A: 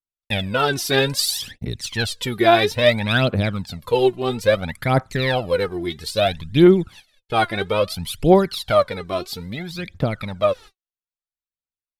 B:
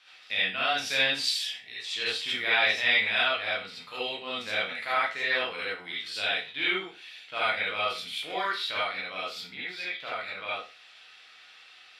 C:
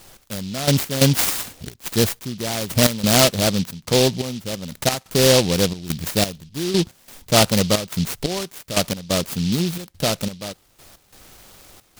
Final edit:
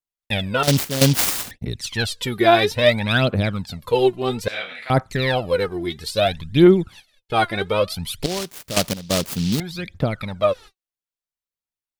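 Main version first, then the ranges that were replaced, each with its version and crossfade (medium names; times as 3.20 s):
A
0.63–1.51 s: from C
4.48–4.90 s: from B
8.23–9.60 s: from C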